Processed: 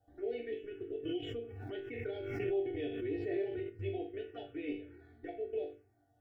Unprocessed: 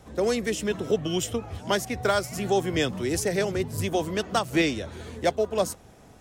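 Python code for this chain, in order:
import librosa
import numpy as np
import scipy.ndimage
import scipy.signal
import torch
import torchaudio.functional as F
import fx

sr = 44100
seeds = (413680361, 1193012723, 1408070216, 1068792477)

y = scipy.signal.sosfilt(scipy.signal.butter(2, 100.0, 'highpass', fs=sr, output='sos'), x)
y = fx.level_steps(y, sr, step_db=15)
y = scipy.signal.sosfilt(scipy.signal.butter(4, 3100.0, 'lowpass', fs=sr, output='sos'), y)
y = y + 0.94 * np.pad(y, (int(2.7 * sr / 1000.0), 0))[:len(y)]
y = fx.quant_dither(y, sr, seeds[0], bits=12, dither='none')
y = fx.resonator_bank(y, sr, root=43, chord='minor', decay_s=0.46)
y = fx.env_phaser(y, sr, low_hz=380.0, high_hz=1200.0, full_db=-40.5)
y = fx.high_shelf(y, sr, hz=2100.0, db=-11.5)
y = fx.fixed_phaser(y, sr, hz=440.0, stages=4)
y = fx.pre_swell(y, sr, db_per_s=33.0, at=(1.03, 3.68), fade=0.02)
y = y * 10.0 ** (9.5 / 20.0)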